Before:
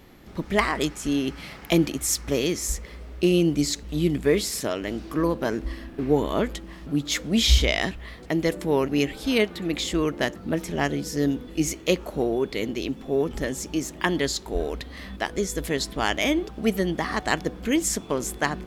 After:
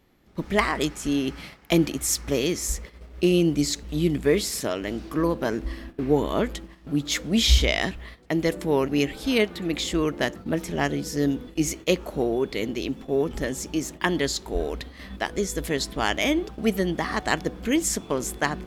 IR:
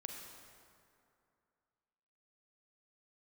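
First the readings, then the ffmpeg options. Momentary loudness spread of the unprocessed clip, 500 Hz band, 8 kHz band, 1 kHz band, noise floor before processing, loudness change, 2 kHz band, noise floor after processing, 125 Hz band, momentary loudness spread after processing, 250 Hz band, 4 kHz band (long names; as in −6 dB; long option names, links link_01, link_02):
8 LU, 0.0 dB, 0.0 dB, 0.0 dB, −43 dBFS, 0.0 dB, 0.0 dB, −49 dBFS, 0.0 dB, 8 LU, 0.0 dB, 0.0 dB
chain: -af "agate=range=-12dB:threshold=-38dB:ratio=16:detection=peak"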